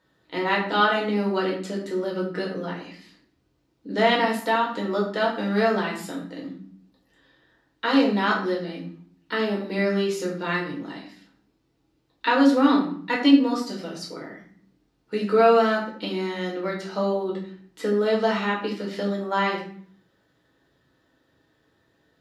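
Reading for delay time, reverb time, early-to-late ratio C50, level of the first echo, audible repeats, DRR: none, 0.55 s, 6.5 dB, none, none, -3.0 dB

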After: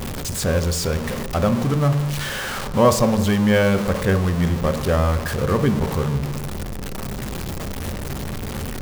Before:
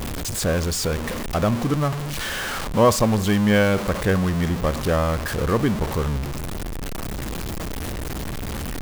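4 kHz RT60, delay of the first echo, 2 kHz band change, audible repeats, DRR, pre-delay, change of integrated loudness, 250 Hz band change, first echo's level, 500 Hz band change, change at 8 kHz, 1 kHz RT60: 1.3 s, none, 0.0 dB, none, 9.5 dB, 3 ms, +1.5 dB, +1.5 dB, none, +1.5 dB, 0.0 dB, 1.2 s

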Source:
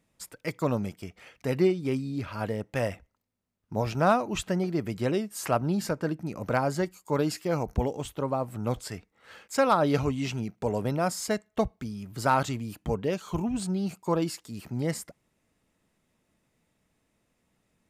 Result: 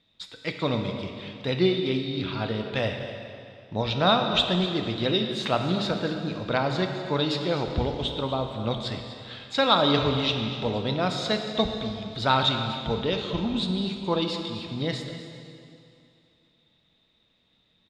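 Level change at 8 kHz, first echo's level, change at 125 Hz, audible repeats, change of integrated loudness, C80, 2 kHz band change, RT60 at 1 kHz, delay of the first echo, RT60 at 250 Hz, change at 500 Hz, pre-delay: -8.5 dB, -14.5 dB, +1.5 dB, 1, +3.0 dB, 5.5 dB, +4.0 dB, 2.6 s, 0.248 s, 2.6 s, +1.5 dB, 5 ms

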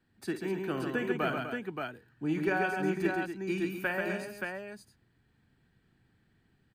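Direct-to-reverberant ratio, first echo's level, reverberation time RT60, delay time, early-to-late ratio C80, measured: none, -12.0 dB, none, 52 ms, none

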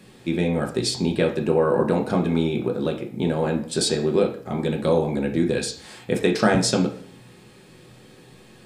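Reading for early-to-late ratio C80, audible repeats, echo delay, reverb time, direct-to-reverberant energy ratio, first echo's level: 13.5 dB, none, none, 0.55 s, 1.0 dB, none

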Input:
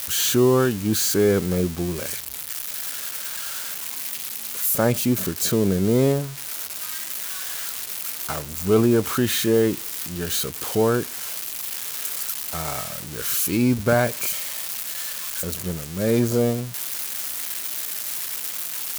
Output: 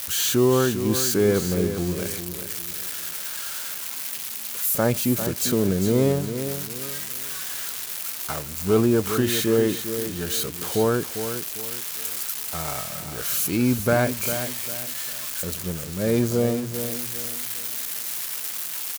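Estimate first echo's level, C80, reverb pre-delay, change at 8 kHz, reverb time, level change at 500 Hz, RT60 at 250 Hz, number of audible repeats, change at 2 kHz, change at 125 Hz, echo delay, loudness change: -9.5 dB, none, none, -1.0 dB, none, -1.0 dB, none, 3, -1.0 dB, -1.0 dB, 0.4 s, -1.0 dB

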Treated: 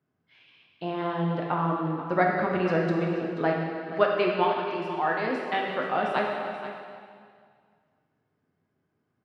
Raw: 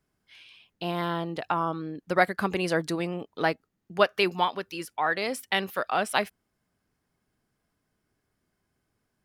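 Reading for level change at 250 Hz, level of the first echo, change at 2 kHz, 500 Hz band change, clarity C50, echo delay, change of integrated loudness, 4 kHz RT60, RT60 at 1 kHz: +3.5 dB, -12.5 dB, -1.5 dB, +2.5 dB, 1.0 dB, 0.482 s, +1.0 dB, 2.0 s, 2.1 s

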